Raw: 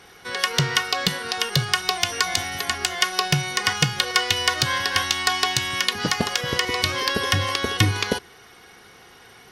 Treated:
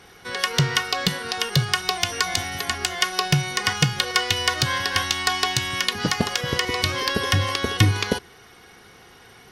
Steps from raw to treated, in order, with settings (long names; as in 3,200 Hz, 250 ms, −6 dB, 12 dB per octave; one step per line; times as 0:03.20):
low-shelf EQ 280 Hz +4.5 dB
level −1 dB